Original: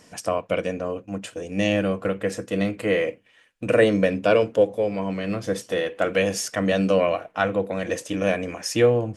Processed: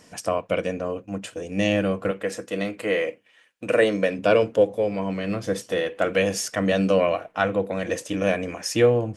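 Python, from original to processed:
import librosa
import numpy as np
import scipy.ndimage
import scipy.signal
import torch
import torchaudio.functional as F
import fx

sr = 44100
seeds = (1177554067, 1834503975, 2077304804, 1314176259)

y = fx.highpass(x, sr, hz=330.0, slope=6, at=(2.11, 4.19))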